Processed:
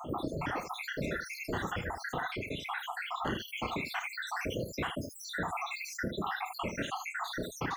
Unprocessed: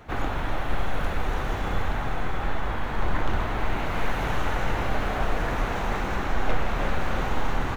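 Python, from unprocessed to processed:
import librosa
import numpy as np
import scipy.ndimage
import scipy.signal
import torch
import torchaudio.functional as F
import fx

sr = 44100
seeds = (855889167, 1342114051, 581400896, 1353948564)

p1 = fx.spec_dropout(x, sr, seeds[0], share_pct=83)
p2 = scipy.signal.sosfilt(scipy.signal.butter(2, 140.0, 'highpass', fs=sr, output='sos'), p1)
p3 = p2 + fx.room_early_taps(p2, sr, ms=(32, 65, 77), db=(-8.5, -15.0, -8.0), dry=0)
p4 = fx.dereverb_blind(p3, sr, rt60_s=1.6)
p5 = fx.dynamic_eq(p4, sr, hz=780.0, q=1.1, threshold_db=-48.0, ratio=4.0, max_db=-4)
y = fx.env_flatten(p5, sr, amount_pct=50)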